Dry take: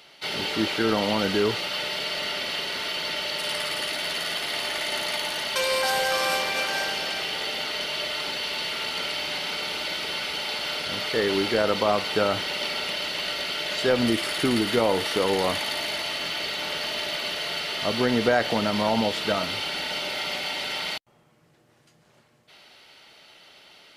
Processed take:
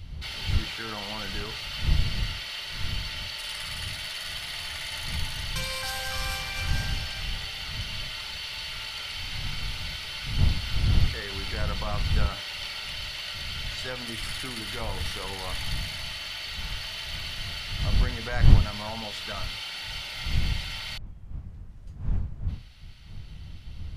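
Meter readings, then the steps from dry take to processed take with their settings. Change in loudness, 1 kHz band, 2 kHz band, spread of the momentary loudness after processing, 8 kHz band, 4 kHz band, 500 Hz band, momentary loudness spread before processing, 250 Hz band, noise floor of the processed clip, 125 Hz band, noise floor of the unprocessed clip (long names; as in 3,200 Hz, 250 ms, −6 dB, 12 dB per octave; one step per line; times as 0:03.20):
−5.5 dB, −10.5 dB, −7.0 dB, 8 LU, −5.0 dB, −5.5 dB, −16.5 dB, 5 LU, −10.0 dB, −41 dBFS, +9.5 dB, −60 dBFS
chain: one-sided soft clipper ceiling −11.5 dBFS
wind on the microphone 120 Hz −22 dBFS
parametric band 350 Hz −13.5 dB 2.4 octaves
mains-hum notches 60/120/180/240/300/360/420/480/540/600 Hz
level −4.5 dB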